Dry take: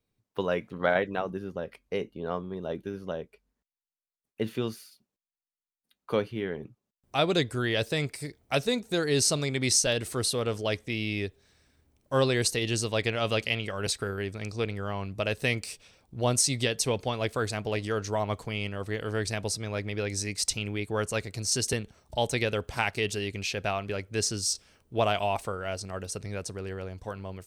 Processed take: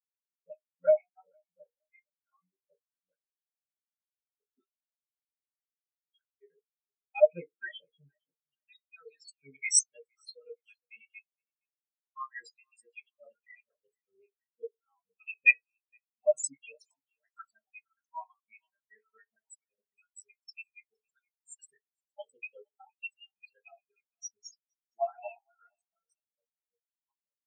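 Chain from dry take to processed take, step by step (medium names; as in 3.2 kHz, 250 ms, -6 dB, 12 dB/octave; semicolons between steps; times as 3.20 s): random holes in the spectrogram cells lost 69%; feedback delay 464 ms, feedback 50%, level -11.5 dB; reverberation RT60 0.45 s, pre-delay 3 ms, DRR 0.5 dB; in parallel at -10 dB: saturation -17.5 dBFS, distortion -18 dB; on the sum: high-pass 850 Hz 6 dB/octave; spectral contrast expander 4:1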